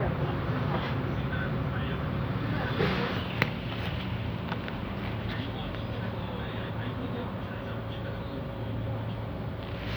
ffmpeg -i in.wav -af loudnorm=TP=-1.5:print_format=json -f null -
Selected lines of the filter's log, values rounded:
"input_i" : "-33.2",
"input_tp" : "-4.2",
"input_lra" : "4.9",
"input_thresh" : "-43.2",